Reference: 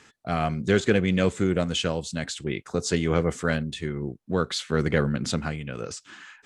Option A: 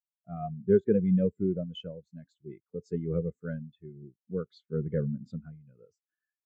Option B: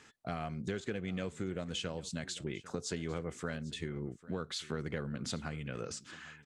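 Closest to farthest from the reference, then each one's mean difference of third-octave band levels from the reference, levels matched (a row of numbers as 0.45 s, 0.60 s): B, A; 4.5 dB, 15.5 dB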